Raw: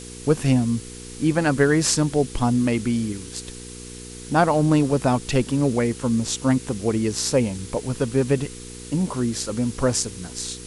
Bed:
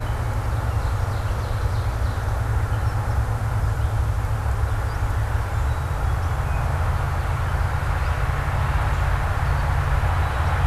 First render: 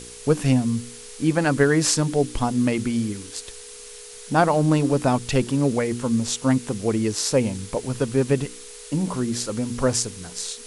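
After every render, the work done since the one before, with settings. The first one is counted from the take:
hum removal 60 Hz, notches 6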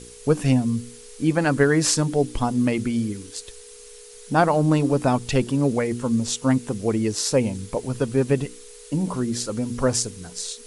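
broadband denoise 6 dB, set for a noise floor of −41 dBFS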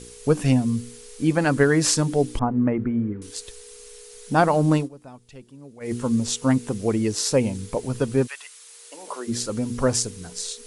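0:02.39–0:03.22: low-pass filter 1,700 Hz 24 dB per octave
0:04.76–0:05.93: duck −23 dB, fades 0.13 s
0:08.26–0:09.27: high-pass filter 1,300 Hz → 380 Hz 24 dB per octave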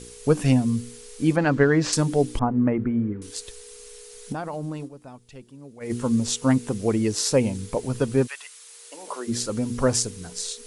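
0:01.36–0:01.93: high-frequency loss of the air 140 metres
0:04.32–0:05.90: downward compressor, threshold −28 dBFS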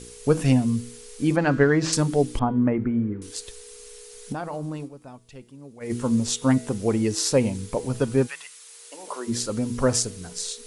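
hum removal 162.2 Hz, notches 29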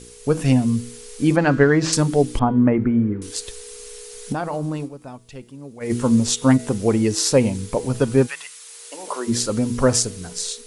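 automatic gain control gain up to 6 dB
every ending faded ahead of time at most 500 dB per second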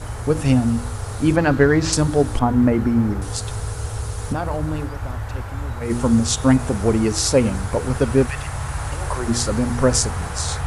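mix in bed −5 dB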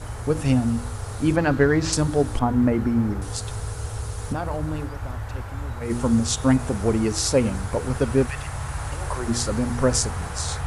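level −3.5 dB

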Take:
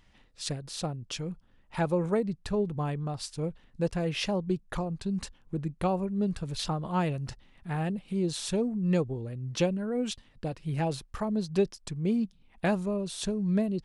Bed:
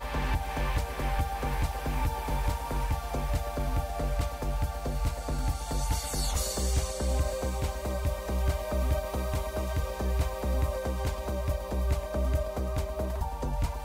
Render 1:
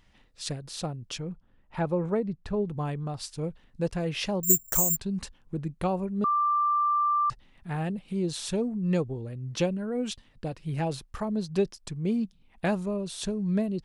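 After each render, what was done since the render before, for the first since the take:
0:01.18–0:02.67: low-pass filter 2,000 Hz 6 dB per octave
0:04.43–0:04.97: bad sample-rate conversion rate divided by 6×, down filtered, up zero stuff
0:06.24–0:07.30: beep over 1,180 Hz −21.5 dBFS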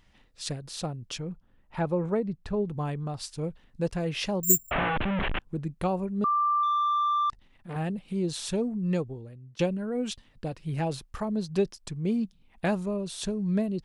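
0:04.71–0:05.39: linear delta modulator 16 kbit/s, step −21 dBFS
0:06.63–0:07.76: saturating transformer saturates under 760 Hz
0:08.79–0:09.59: fade out, to −20.5 dB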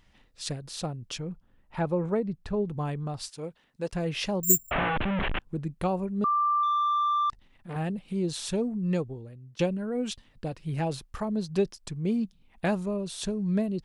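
0:03.29–0:03.93: high-pass filter 420 Hz 6 dB per octave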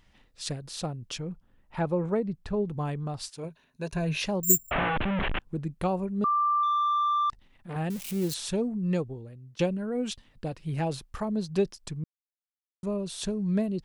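0:03.43–0:04.22: EQ curve with evenly spaced ripples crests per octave 1.5, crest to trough 10 dB
0:07.90–0:08.34: spike at every zero crossing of −28 dBFS
0:12.04–0:12.83: silence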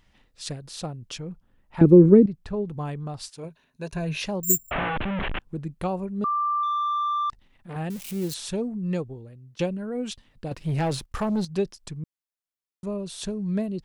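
0:01.81–0:02.26: low shelf with overshoot 500 Hz +13 dB, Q 3
0:10.51–0:11.45: leveller curve on the samples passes 2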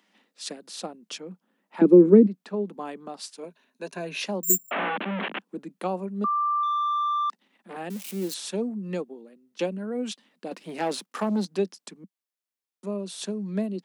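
Butterworth high-pass 190 Hz 72 dB per octave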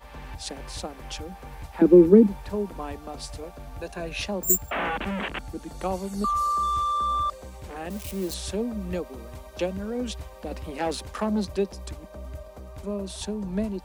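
mix in bed −10.5 dB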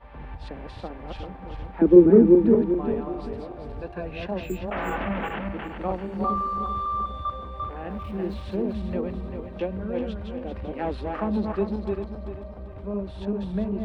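feedback delay that plays each chunk backwards 196 ms, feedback 59%, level −3 dB
high-frequency loss of the air 460 metres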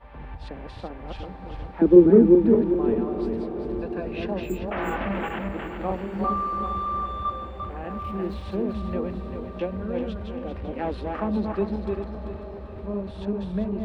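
feedback delay with all-pass diffusion 833 ms, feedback 57%, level −13.5 dB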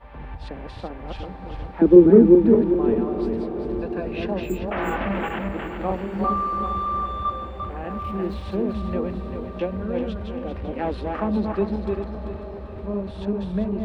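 level +2.5 dB
brickwall limiter −1 dBFS, peak gain reduction 1 dB

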